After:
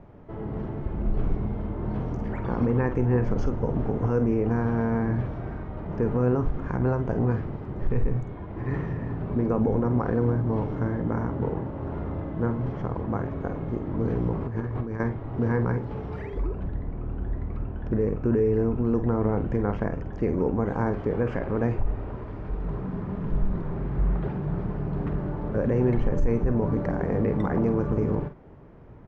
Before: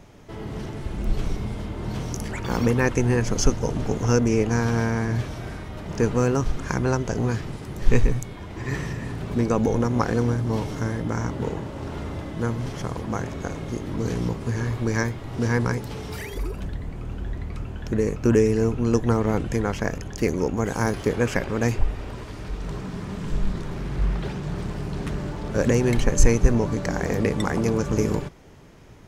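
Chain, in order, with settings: LPF 1200 Hz 12 dB/oct; limiter -15.5 dBFS, peak gain reduction 11 dB; 14.33–15 negative-ratio compressor -28 dBFS, ratio -0.5; doubler 48 ms -10 dB

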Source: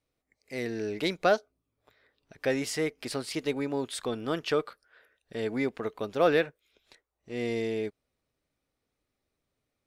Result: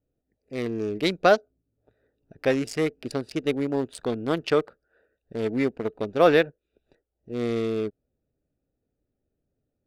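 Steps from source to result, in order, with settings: Wiener smoothing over 41 samples; gain +6 dB

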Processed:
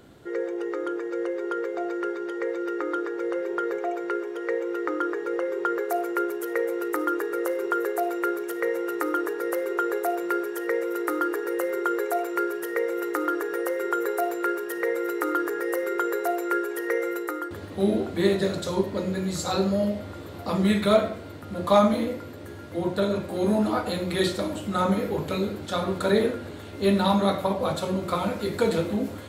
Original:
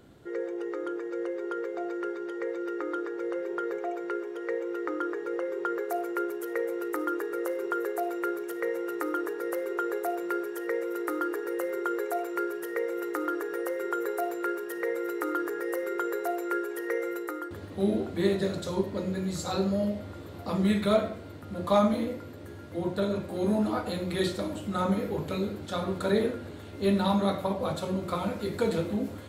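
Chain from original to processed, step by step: low shelf 340 Hz -3.5 dB; gain +5.5 dB

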